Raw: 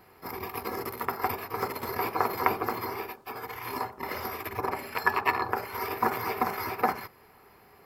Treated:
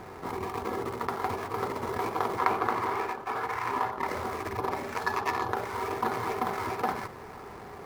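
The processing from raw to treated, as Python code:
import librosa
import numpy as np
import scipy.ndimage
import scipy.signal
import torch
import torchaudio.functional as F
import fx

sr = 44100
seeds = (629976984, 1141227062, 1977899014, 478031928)

y = scipy.signal.medfilt(x, 15)
y = fx.peak_eq(y, sr, hz=1400.0, db=8.5, octaves=2.5, at=(2.38, 4.07))
y = fx.env_flatten(y, sr, amount_pct=50)
y = y * librosa.db_to_amplitude(-7.5)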